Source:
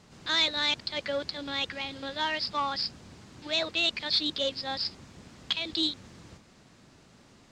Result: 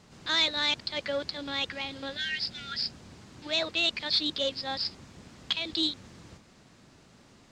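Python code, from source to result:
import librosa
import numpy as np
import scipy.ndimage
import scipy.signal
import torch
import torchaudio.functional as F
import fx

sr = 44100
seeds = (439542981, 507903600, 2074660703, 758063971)

y = fx.spec_repair(x, sr, seeds[0], start_s=2.19, length_s=0.67, low_hz=200.0, high_hz=1300.0, source='after')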